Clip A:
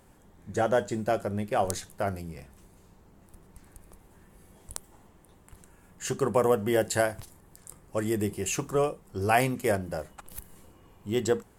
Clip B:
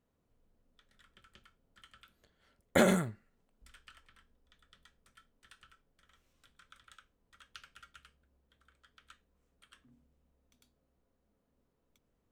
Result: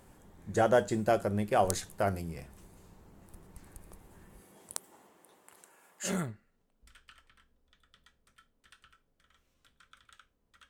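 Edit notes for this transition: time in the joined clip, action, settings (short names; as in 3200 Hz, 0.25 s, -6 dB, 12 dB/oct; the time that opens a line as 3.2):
clip A
4.4–6.21 HPF 190 Hz -> 750 Hz
6.12 switch to clip B from 2.91 s, crossfade 0.18 s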